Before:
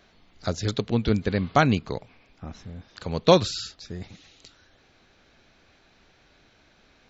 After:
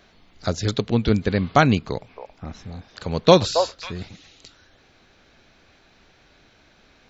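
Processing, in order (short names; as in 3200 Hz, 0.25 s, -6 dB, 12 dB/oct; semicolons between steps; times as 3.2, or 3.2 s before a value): 1.89–4.09 delay with a stepping band-pass 0.273 s, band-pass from 750 Hz, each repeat 1.4 oct, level -4 dB; gain +3.5 dB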